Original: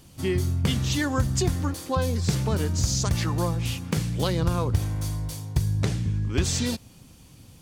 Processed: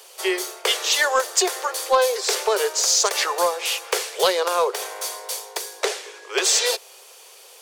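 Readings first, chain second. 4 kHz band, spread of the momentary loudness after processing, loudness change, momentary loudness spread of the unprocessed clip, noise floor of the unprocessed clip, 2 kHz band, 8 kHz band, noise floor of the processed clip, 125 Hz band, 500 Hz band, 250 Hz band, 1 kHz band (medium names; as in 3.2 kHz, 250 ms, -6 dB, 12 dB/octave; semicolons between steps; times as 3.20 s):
+10.5 dB, 11 LU, +5.0 dB, 5 LU, -51 dBFS, +10.5 dB, +10.5 dB, -47 dBFS, under -40 dB, +9.0 dB, -9.0 dB, +10.5 dB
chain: steep high-pass 390 Hz 96 dB/octave; in parallel at -10 dB: wavefolder -23 dBFS; on the sum: trim +8.5 dB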